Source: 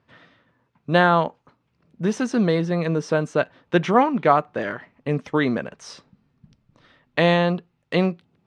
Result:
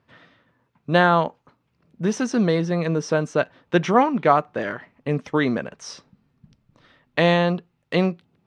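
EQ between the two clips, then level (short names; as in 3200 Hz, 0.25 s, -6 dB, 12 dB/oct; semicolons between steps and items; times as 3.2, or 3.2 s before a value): dynamic EQ 5700 Hz, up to +6 dB, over -55 dBFS, Q 5.4; 0.0 dB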